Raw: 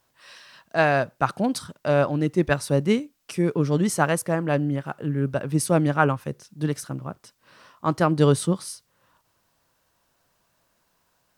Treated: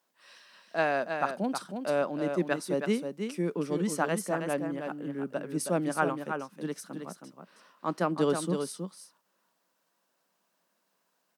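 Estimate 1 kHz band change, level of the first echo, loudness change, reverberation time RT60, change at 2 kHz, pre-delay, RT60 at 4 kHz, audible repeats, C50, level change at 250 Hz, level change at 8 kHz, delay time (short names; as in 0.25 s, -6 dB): -6.5 dB, -6.5 dB, -7.5 dB, none, -7.0 dB, none, none, 1, none, -7.5 dB, -7.0 dB, 0.319 s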